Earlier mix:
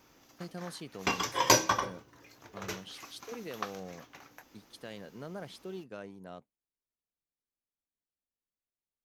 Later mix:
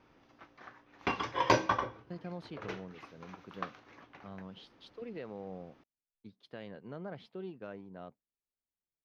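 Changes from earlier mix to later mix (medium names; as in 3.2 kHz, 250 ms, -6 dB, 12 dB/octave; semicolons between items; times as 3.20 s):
speech: entry +1.70 s; master: add distance through air 290 m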